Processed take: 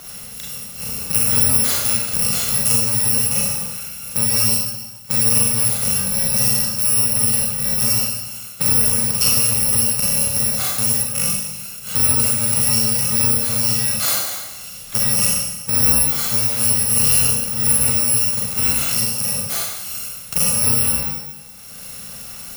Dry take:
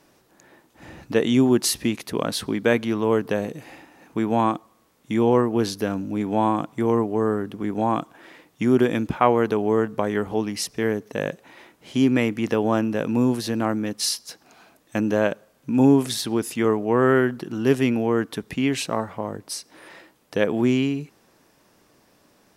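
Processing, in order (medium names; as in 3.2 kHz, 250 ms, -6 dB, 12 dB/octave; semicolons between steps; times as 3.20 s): bit-reversed sample order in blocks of 128 samples; Schroeder reverb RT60 0.81 s, combs from 32 ms, DRR -4.5 dB; three bands compressed up and down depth 70%; trim -1.5 dB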